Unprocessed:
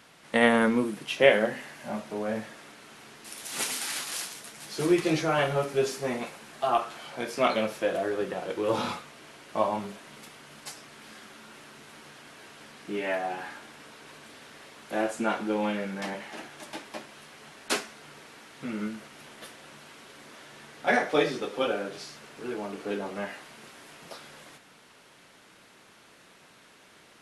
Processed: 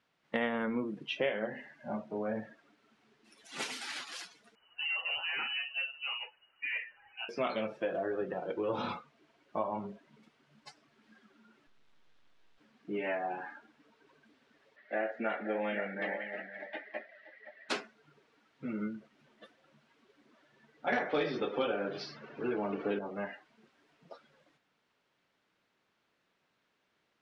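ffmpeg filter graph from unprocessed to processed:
-filter_complex "[0:a]asettb=1/sr,asplit=3[a][b][c];[a]atrim=end=4.554[d];[b]atrim=start=4.55:end=7.29,asetpts=PTS-STARTPTS,afade=t=in:d=0.004:c=qsin,afade=t=out:st=2.736:d=0.004:c=qsin,equalizer=f=680:w=0.73:g=-7,asoftclip=type=hard:threshold=-27.5dB,lowpass=f=2.6k:t=q:w=0.5098,lowpass=f=2.6k:t=q:w=0.6013,lowpass=f=2.6k:t=q:w=0.9,lowpass=f=2.6k:t=q:w=2.563,afreqshift=-3100[e];[c]atrim=start=7.286[f];[d][e]acrossfade=d=0.004:c1=hsin:c2=qsin[g];[g][f]acrossfade=d=0.004:c1=qsin:c2=hsin,asettb=1/sr,asplit=3[h][i][j];[h]atrim=end=11.674[k];[i]atrim=start=11.67:end=12.58,asetpts=PTS-STARTPTS,afade=t=in:d=0.004:c=qsin,afade=t=out:st=0.906:d=0.004:c=qsin,equalizer=f=3.6k:t=o:w=0.29:g=5.5,aeval=exprs='max(val(0),0)':c=same[l];[j]atrim=start=12.576[m];[k][l]acrossfade=d=0.004:c1=hsin:c2=qsin[n];[n][m]acrossfade=d=0.004:c1=qsin:c2=hsin,asettb=1/sr,asplit=3[o][p][q];[o]atrim=end=14.764[r];[p]atrim=start=14.76:end=17.69,asetpts=PTS-STARTPTS,afade=t=in:d=0.004:c=qsin,afade=t=out:st=2.926:d=0.004:c=qsin,highpass=250,equalizer=f=340:t=q:w=4:g=-4,equalizer=f=620:t=q:w=4:g=5,equalizer=f=980:t=q:w=4:g=-7,equalizer=f=1.9k:t=q:w=4:g=10,lowpass=f=4.6k:w=0.5412,lowpass=f=4.6k:w=1.3066,aecho=1:1:521:0.282,atrim=end_sample=129213[s];[q]atrim=start=17.686[t];[r][s]acrossfade=d=0.004:c1=hsin:c2=qsin[u];[u][t]acrossfade=d=0.004:c1=qsin:c2=hsin,asettb=1/sr,asplit=3[v][w][x];[v]atrim=end=20.924[y];[w]atrim=start=20.92:end=22.99,asetpts=PTS-STARTPTS,afade=t=in:d=0.004:c=qsin,afade=t=out:st=2.066:d=0.004:c=qsin,lowpass=f=6.2k:w=0.5412,lowpass=f=6.2k:w=1.3066,acontrast=66,volume=12dB,asoftclip=hard,volume=-12dB[z];[x]atrim=start=22.986[aa];[y][z]acrossfade=d=0.004:c1=hsin:c2=qsin[ab];[ab][aa]acrossfade=d=0.004:c1=qsin:c2=hsin,afftdn=nr=18:nf=-39,lowpass=5k,acompressor=threshold=-27dB:ratio=4,volume=-3dB"

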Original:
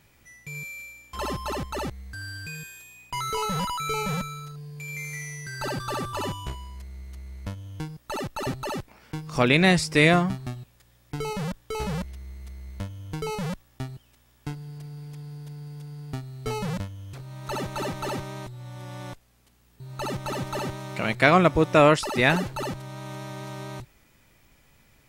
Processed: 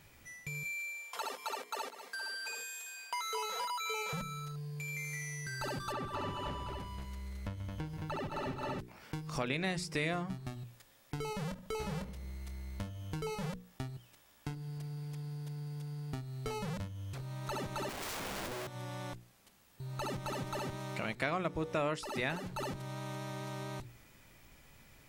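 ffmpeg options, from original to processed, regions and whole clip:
-filter_complex "[0:a]asettb=1/sr,asplit=3[a][b][c];[a]atrim=end=0.654[d];[b]atrim=start=0.65:end=4.13,asetpts=PTS-STARTPTS,afade=t=in:d=0.004:c=qsin,afade=t=out:st=3.476:d=0.004:c=qsin,highpass=f=450:w=0.5412,highpass=f=450:w=1.3066,aecho=1:1:4.3:0.85,atrim=end_sample=153468,aecho=1:1:729:0.15,atrim=end_sample=153468[e];[c]atrim=start=4.126[f];[d][e]acrossfade=d=0.004:c1=hsin:c2=qsin[g];[g][f]acrossfade=d=0.004:c1=qsin:c2=hsin,asettb=1/sr,asplit=3[h][i][j];[h]atrim=end=5.924[k];[i]atrim=start=5.92:end=8.79,asetpts=PTS-STARTPTS,afade=t=in:d=0.004:c=qsin,afade=t=out:st=2.866:d=0.004:c=qsin,acrossover=split=3800[l][m];[m]acompressor=threshold=-55dB:ratio=4:attack=1:release=60[n];[l][n]amix=inputs=2:normalize=0,aecho=1:1:134|219|316|365|516:0.266|0.562|0.266|0.15|0.316,atrim=end_sample=126567[o];[j]atrim=start=8.786[p];[k][o]acrossfade=d=0.004:c1=hsin:c2=qsin[q];[q][p]acrossfade=d=0.004:c1=qsin:c2=hsin,asettb=1/sr,asplit=3[r][s][t];[r]atrim=end=11.484[u];[s]atrim=start=11.48:end=13.53,asetpts=PTS-STARTPTS,afade=t=in:d=0.004:c=qsin,afade=t=out:st=2.046:d=0.004:c=qsin,asplit=2[v][w];[w]adelay=25,volume=-10dB[x];[v][x]amix=inputs=2:normalize=0,atrim=end_sample=90405,asplit=2[y][z];[z]adelay=73,lowpass=f=1.8k:p=1,volume=-15dB,asplit=2[aa][ab];[ab]adelay=73,lowpass=f=1.8k:p=1,volume=0.55,asplit=2[ac][ad];[ad]adelay=73,lowpass=f=1.8k:p=1,volume=0.55,asplit=2[ae][af];[af]adelay=73,lowpass=f=1.8k:p=1,volume=0.55,asplit=2[ag][ah];[ah]adelay=73,lowpass=f=1.8k:p=1,volume=0.55[ai];[y][aa][ac][ae][ag][ai]amix=inputs=6:normalize=0,atrim=end_sample=90405[aj];[t]atrim=start=13.526[ak];[u][aj]acrossfade=d=0.004:c1=hsin:c2=qsin[al];[al][ak]acrossfade=d=0.004:c1=qsin:c2=hsin,asettb=1/sr,asplit=3[am][an][ao];[am]atrim=end=17.894[ap];[an]atrim=start=17.89:end=18.67,asetpts=PTS-STARTPTS,afade=t=in:d=0.004:c=qsin,afade=t=out:st=0.776:d=0.004:c=qsin,aemphasis=mode=reproduction:type=bsi,aeval=exprs='(mod(37.6*val(0)+1,2)-1)/37.6':c=same[aq];[ao]atrim=start=18.666[ar];[ap][aq]acrossfade=d=0.004:c1=hsin:c2=qsin[as];[as][ar]acrossfade=d=0.004:c1=qsin:c2=hsin,bandreject=f=60:t=h:w=6,bandreject=f=120:t=h:w=6,bandreject=f=180:t=h:w=6,bandreject=f=240:t=h:w=6,bandreject=f=300:t=h:w=6,bandreject=f=360:t=h:w=6,bandreject=f=420:t=h:w=6,bandreject=f=480:t=h:w=6,acompressor=threshold=-40dB:ratio=2.5"

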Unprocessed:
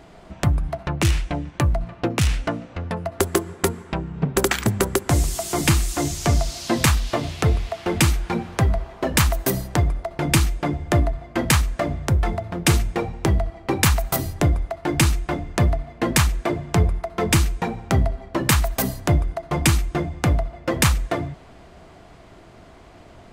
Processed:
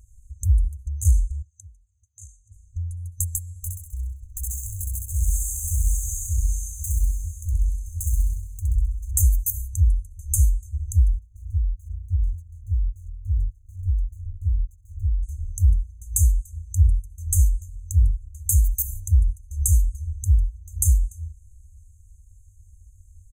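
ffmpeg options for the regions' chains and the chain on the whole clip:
-filter_complex "[0:a]asettb=1/sr,asplit=3[a][b][c];[a]atrim=end=1.424[d];[b]atrim=start=1.42:end=2.52,asetpts=PTS-STARTPTS,afade=t=in:d=0.004:c=qsin,afade=t=out:st=1.096:d=0.004:c=qsin,acompressor=mode=upward:threshold=-21dB:ratio=2.5:attack=3.2:release=140:knee=2.83:detection=peak,highpass=370,lowpass=3.7k[e];[c]atrim=start=2.516[f];[d][e]acrossfade=d=0.004:c1=hsin:c2=qsin[g];[g][f]acrossfade=d=0.004:c1=qsin:c2=hsin,asettb=1/sr,asplit=3[h][i][j];[h]atrim=end=3.494[k];[i]atrim=start=3.49:end=9.11,asetpts=PTS-STARTPTS,afade=t=in:d=0.004:c=qsin,afade=t=out:st=5.616:d=0.004:c=qsin,asoftclip=type=hard:threshold=-23dB,aecho=1:1:65|130|195|260|325|390|455|520:0.631|0.366|0.212|0.123|0.0714|0.0414|0.024|0.0139,atrim=end_sample=247842[l];[j]atrim=start=9.106[m];[k][l]acrossfade=d=0.004:c1=hsin:c2=qsin[n];[n][m]acrossfade=d=0.004:c1=qsin:c2=hsin,asettb=1/sr,asplit=3[o][p][q];[o]atrim=end=11.194[r];[p]atrim=start=11.19:end=15.23,asetpts=PTS-STARTPTS,afade=t=in:d=0.004:c=qsin,afade=t=out:st=4.036:d=0.004:c=qsin,lowpass=f=1k:w=0.5412,lowpass=f=1k:w=1.3066,equalizer=f=68:w=1.6:g=-6.5,aeval=exprs='sgn(val(0))*max(abs(val(0))-0.00473,0)':c=same[s];[q]atrim=start=15.226[t];[r][s]acrossfade=d=0.004:c1=hsin:c2=qsin[u];[u][t]acrossfade=d=0.004:c1=qsin:c2=hsin,aecho=1:1:2.4:0.65,afftfilt=real='re*(1-between(b*sr/4096,100,6200))':imag='im*(1-between(b*sr/4096,100,6200))':win_size=4096:overlap=0.75"

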